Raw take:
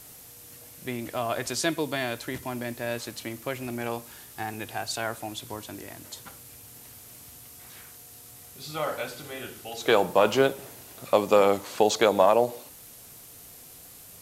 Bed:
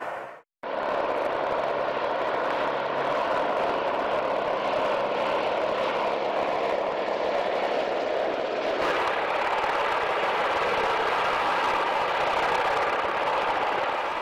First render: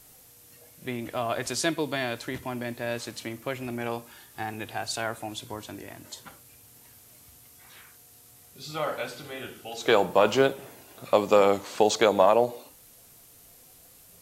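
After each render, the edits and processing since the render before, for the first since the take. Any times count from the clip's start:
noise reduction from a noise print 6 dB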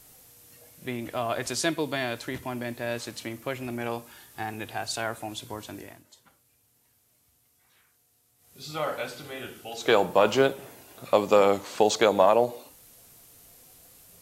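0:05.80–0:08.63: duck −13.5 dB, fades 0.25 s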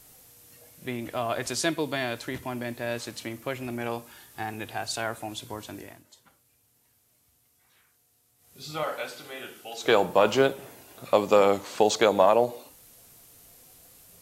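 0:08.83–0:09.84: high-pass filter 370 Hz 6 dB per octave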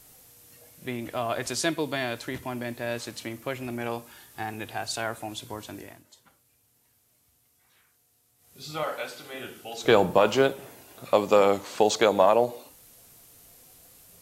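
0:09.34–0:10.18: low-shelf EQ 240 Hz +10 dB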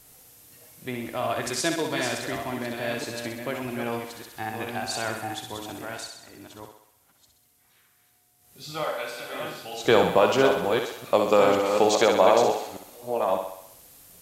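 delay that plays each chunk backwards 608 ms, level −6 dB
feedback echo with a high-pass in the loop 64 ms, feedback 59%, high-pass 300 Hz, level −5.5 dB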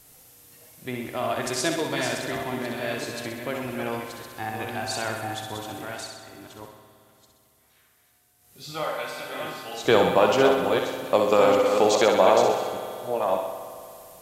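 spring reverb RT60 2.7 s, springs 56 ms, chirp 55 ms, DRR 7 dB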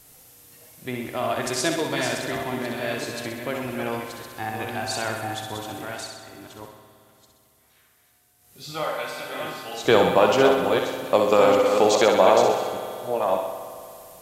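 level +1.5 dB

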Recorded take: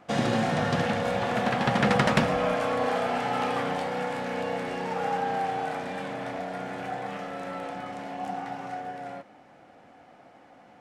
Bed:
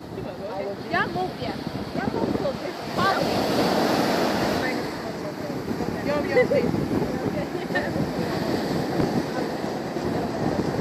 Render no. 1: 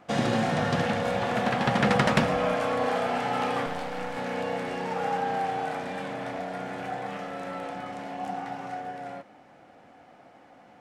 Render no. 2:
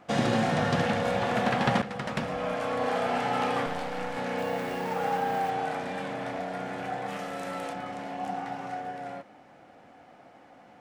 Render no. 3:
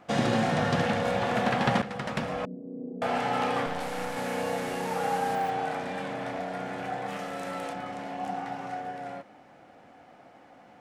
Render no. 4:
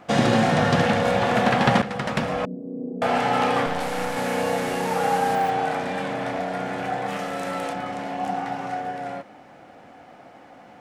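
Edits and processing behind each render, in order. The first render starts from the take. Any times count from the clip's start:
0:03.66–0:04.17: gain on one half-wave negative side −12 dB
0:01.82–0:03.15: fade in, from −17.5 dB; 0:04.38–0:05.50: hold until the input has moved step −46.5 dBFS; 0:07.07–0:07.72: high-shelf EQ 6,800 Hz → 4,800 Hz +12 dB
0:02.45–0:03.02: elliptic band-pass filter 160–400 Hz, stop band 70 dB; 0:03.80–0:05.35: linear delta modulator 64 kbit/s, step −36 dBFS
level +6.5 dB

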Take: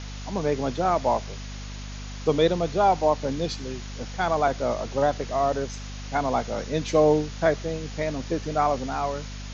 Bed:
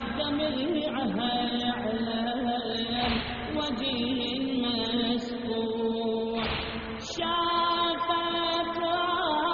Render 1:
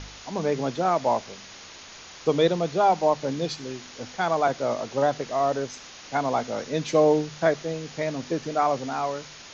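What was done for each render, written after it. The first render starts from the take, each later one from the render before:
hum removal 50 Hz, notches 5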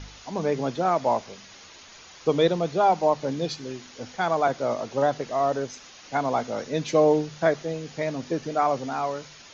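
broadband denoise 6 dB, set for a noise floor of −45 dBFS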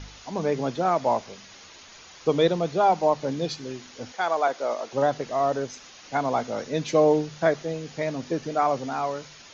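0:04.12–0:04.93: high-pass filter 410 Hz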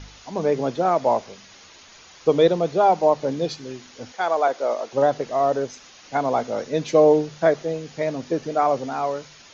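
dynamic equaliser 490 Hz, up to +5 dB, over −33 dBFS, Q 0.93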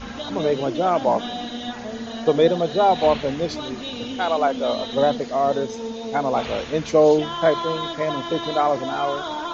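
mix in bed −2 dB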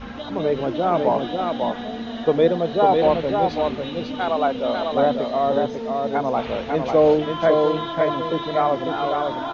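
high-frequency loss of the air 200 metres
single-tap delay 547 ms −4 dB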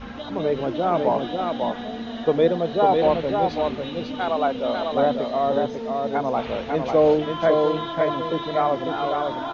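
level −1.5 dB

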